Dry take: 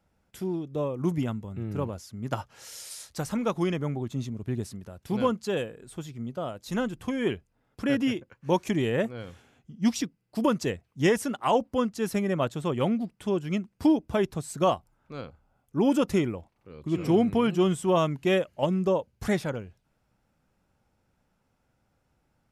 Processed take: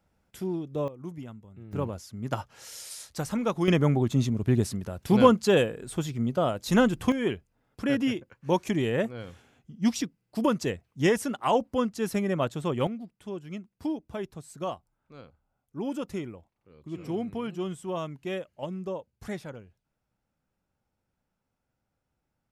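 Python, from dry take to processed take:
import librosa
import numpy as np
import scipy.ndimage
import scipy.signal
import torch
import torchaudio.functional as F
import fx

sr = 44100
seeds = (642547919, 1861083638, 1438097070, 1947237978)

y = fx.gain(x, sr, db=fx.steps((0.0, -0.5), (0.88, -12.0), (1.73, 0.0), (3.68, 7.5), (7.12, -0.5), (12.87, -9.5)))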